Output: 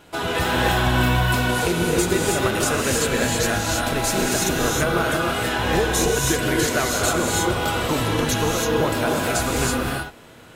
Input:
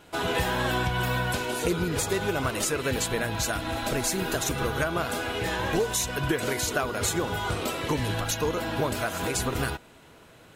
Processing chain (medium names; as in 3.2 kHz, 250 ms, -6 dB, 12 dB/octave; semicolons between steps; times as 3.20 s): gated-style reverb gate 350 ms rising, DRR -1.5 dB; trim +3 dB